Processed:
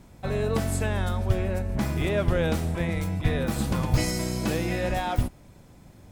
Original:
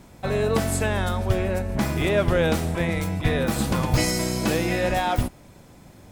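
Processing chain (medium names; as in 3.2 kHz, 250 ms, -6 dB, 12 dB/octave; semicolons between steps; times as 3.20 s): bass shelf 160 Hz +6.5 dB; trim -5.5 dB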